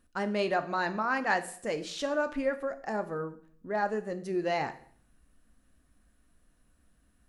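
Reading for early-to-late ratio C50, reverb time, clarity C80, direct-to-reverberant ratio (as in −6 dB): 14.5 dB, 0.55 s, 18.0 dB, 9.0 dB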